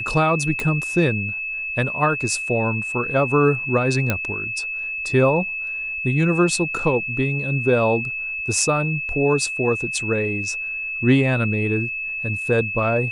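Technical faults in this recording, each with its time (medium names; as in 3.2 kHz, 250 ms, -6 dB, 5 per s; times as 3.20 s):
whine 2.6 kHz -25 dBFS
0.60 s: pop
4.10 s: pop -6 dBFS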